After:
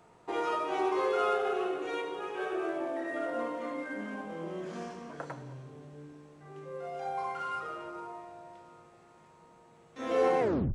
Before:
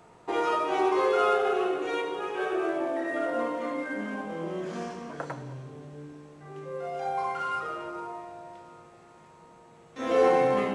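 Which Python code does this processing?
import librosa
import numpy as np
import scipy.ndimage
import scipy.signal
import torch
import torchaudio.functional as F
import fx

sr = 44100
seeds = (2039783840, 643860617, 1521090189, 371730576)

y = fx.tape_stop_end(x, sr, length_s=0.35)
y = F.gain(torch.from_numpy(y), -5.0).numpy()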